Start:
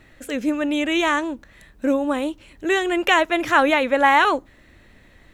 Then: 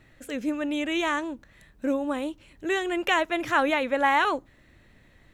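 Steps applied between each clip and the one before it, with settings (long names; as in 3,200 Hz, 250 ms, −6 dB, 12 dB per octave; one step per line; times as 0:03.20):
parametric band 130 Hz +5 dB 0.77 octaves
level −6.5 dB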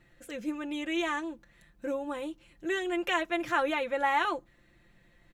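comb filter 5.8 ms
level −7 dB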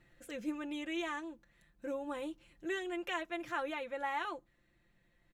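speech leveller within 3 dB 0.5 s
level −7 dB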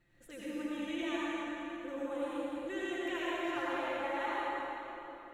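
convolution reverb RT60 3.6 s, pre-delay 73 ms, DRR −8 dB
level −6.5 dB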